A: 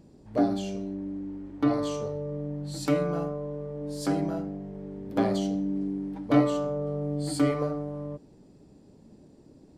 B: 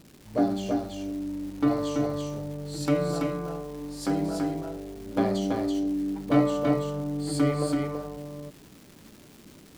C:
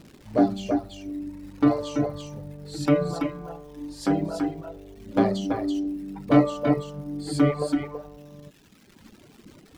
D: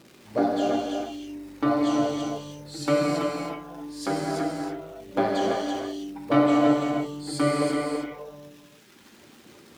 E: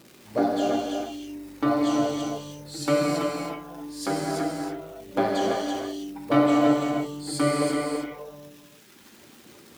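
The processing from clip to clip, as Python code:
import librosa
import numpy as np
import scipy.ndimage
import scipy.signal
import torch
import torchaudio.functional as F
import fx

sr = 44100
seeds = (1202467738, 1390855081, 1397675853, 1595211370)

y1 = fx.dmg_crackle(x, sr, seeds[0], per_s=430.0, level_db=-41.0)
y1 = y1 + 10.0 ** (-3.5 / 20.0) * np.pad(y1, (int(332 * sr / 1000.0), 0))[:len(y1)]
y2 = fx.dereverb_blind(y1, sr, rt60_s=1.9)
y2 = fx.high_shelf(y2, sr, hz=6100.0, db=-9.0)
y2 = y2 * librosa.db_to_amplitude(4.5)
y3 = fx.highpass(y2, sr, hz=360.0, slope=6)
y3 = fx.rev_gated(y3, sr, seeds[1], gate_ms=340, shape='flat', drr_db=-1.5)
y4 = fx.high_shelf(y3, sr, hz=8400.0, db=7.5)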